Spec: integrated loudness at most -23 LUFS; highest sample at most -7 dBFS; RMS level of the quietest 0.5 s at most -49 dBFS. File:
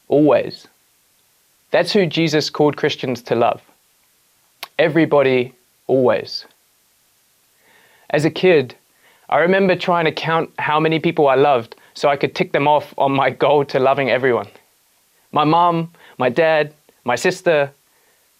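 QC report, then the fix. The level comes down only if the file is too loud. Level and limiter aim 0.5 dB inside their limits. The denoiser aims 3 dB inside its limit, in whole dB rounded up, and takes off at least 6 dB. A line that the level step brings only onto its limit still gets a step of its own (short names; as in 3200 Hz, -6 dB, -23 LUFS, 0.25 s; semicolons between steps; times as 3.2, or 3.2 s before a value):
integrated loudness -17.0 LUFS: fail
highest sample -4.5 dBFS: fail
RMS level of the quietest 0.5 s -59 dBFS: OK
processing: gain -6.5 dB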